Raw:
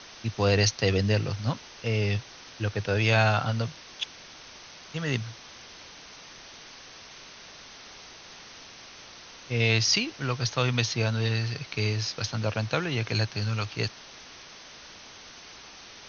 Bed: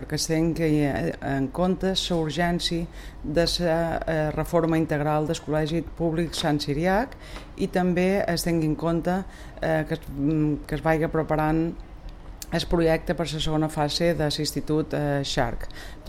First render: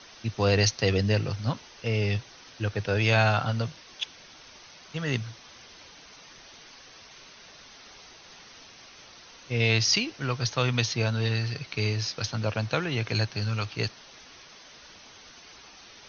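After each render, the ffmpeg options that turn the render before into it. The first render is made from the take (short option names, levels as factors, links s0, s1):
-af "afftdn=nr=6:nf=-48"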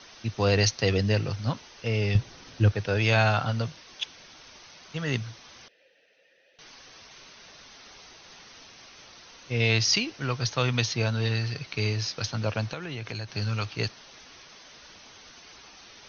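-filter_complex "[0:a]asettb=1/sr,asplit=3[s0][s1][s2];[s0]atrim=end=2.154[s3];[s1]atrim=start=2.15:end=2.72,asetpts=PTS-STARTPTS,afade=t=in:d=0.004:c=qsin,afade=t=out:st=0.566:d=0.004:c=qsin,lowshelf=f=380:g=10.5[s4];[s2]atrim=start=2.716[s5];[s3][s4]acrossfade=d=0.004:c1=hsin:c2=qsin[s6];[s6][s5]acrossfade=d=0.004:c1=qsin:c2=hsin,asettb=1/sr,asplit=3[s7][s8][s9];[s7]atrim=end=5.684[s10];[s8]atrim=start=5.68:end=6.59,asetpts=PTS-STARTPTS,afade=t=in:d=0.004:c=qsin,afade=t=out:st=0.906:d=0.004:c=qsin,asplit=3[s11][s12][s13];[s11]bandpass=f=530:t=q:w=8,volume=1[s14];[s12]bandpass=f=1840:t=q:w=8,volume=0.501[s15];[s13]bandpass=f=2480:t=q:w=8,volume=0.355[s16];[s14][s15][s16]amix=inputs=3:normalize=0[s17];[s9]atrim=start=6.586[s18];[s10][s17]acrossfade=d=0.004:c1=hsin:c2=qsin[s19];[s19][s18]acrossfade=d=0.004:c1=qsin:c2=hsin,asettb=1/sr,asplit=3[s20][s21][s22];[s20]atrim=end=12.714[s23];[s21]atrim=start=12.71:end=13.29,asetpts=PTS-STARTPTS,afade=t=in:d=0.004:c=qsin,afade=t=out:st=0.576:d=0.004:c=qsin,acompressor=threshold=0.0282:ratio=6:attack=3.2:release=140:knee=1:detection=peak[s24];[s22]atrim=start=13.286[s25];[s23][s24]acrossfade=d=0.004:c1=hsin:c2=qsin[s26];[s26][s25]acrossfade=d=0.004:c1=qsin:c2=hsin"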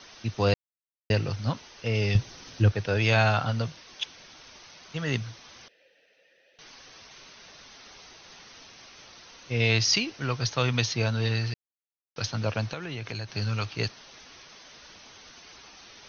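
-filter_complex "[0:a]asettb=1/sr,asplit=3[s0][s1][s2];[s0]atrim=end=1.954[s3];[s1]atrim=start=1.95:end=2.62,asetpts=PTS-STARTPTS,afade=t=in:d=0.004:c=qsin,afade=t=out:st=0.666:d=0.004:c=qsin,highshelf=f=5900:g=8.5[s4];[s2]atrim=start=2.616[s5];[s3][s4]acrossfade=d=0.004:c1=hsin:c2=qsin[s6];[s6][s5]acrossfade=d=0.004:c1=qsin:c2=hsin,asplit=5[s7][s8][s9][s10][s11];[s7]atrim=end=0.54,asetpts=PTS-STARTPTS,afade=t=out:st=0.536:d=0.004:c=hsin[s12];[s8]atrim=start=0.54:end=1.1,asetpts=PTS-STARTPTS,volume=0[s13];[s9]atrim=start=1.1:end=11.54,asetpts=PTS-STARTPTS,afade=t=in:d=0.004:c=hsin,afade=t=out:st=10.436:d=0.004:c=hsin[s14];[s10]atrim=start=11.54:end=12.16,asetpts=PTS-STARTPTS,volume=0[s15];[s11]atrim=start=12.16,asetpts=PTS-STARTPTS,afade=t=in:d=0.004:c=hsin[s16];[s12][s13][s14][s15][s16]concat=n=5:v=0:a=1"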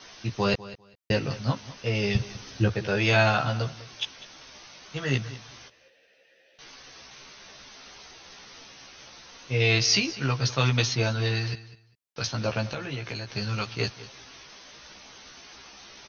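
-filter_complex "[0:a]asplit=2[s0][s1];[s1]adelay=15,volume=0.708[s2];[s0][s2]amix=inputs=2:normalize=0,aecho=1:1:199|398:0.141|0.0254"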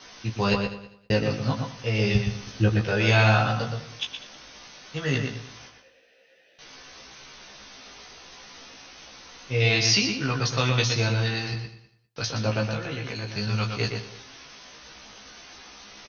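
-filter_complex "[0:a]asplit=2[s0][s1];[s1]adelay=19,volume=0.422[s2];[s0][s2]amix=inputs=2:normalize=0,asplit=2[s3][s4];[s4]adelay=119,lowpass=f=3600:p=1,volume=0.596,asplit=2[s5][s6];[s6]adelay=119,lowpass=f=3600:p=1,volume=0.17,asplit=2[s7][s8];[s8]adelay=119,lowpass=f=3600:p=1,volume=0.17[s9];[s5][s7][s9]amix=inputs=3:normalize=0[s10];[s3][s10]amix=inputs=2:normalize=0"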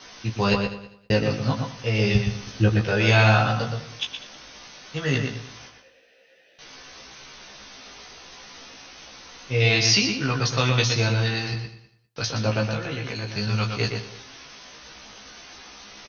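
-af "volume=1.26"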